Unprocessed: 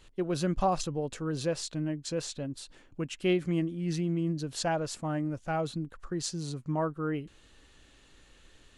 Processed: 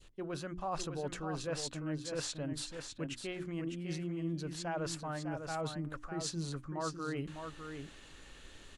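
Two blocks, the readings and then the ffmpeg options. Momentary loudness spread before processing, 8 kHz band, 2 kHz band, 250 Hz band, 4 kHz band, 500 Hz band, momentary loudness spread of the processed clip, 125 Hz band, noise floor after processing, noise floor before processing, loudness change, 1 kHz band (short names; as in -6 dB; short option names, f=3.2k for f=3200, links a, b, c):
10 LU, -3.5 dB, -3.5 dB, -8.0 dB, -3.5 dB, -7.5 dB, 8 LU, -7.0 dB, -55 dBFS, -60 dBFS, -7.0 dB, -7.0 dB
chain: -af "adynamicequalizer=threshold=0.00562:dfrequency=1300:dqfactor=0.72:tfrequency=1300:tqfactor=0.72:attack=5:release=100:ratio=0.375:range=3.5:mode=boostabove:tftype=bell,areverse,acompressor=threshold=-40dB:ratio=6,areverse,bandreject=f=60:t=h:w=6,bandreject=f=120:t=h:w=6,bandreject=f=180:t=h:w=6,bandreject=f=240:t=h:w=6,bandreject=f=300:t=h:w=6,bandreject=f=360:t=h:w=6,aecho=1:1:603:0.447,volume=3.5dB"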